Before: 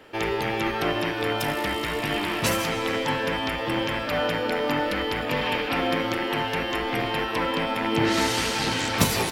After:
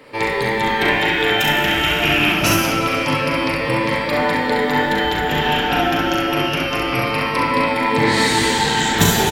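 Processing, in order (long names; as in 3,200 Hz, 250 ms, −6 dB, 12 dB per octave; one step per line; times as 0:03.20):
rippled gain that drifts along the octave scale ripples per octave 0.96, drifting −0.26 Hz, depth 9 dB
0:00.79–0:02.32: parametric band 2,400 Hz +11 dB 0.59 octaves
ambience of single reflections 39 ms −6 dB, 67 ms −4 dB
on a send at −5 dB: convolution reverb RT60 1.8 s, pre-delay 7 ms
on the sum: level +3.5 dB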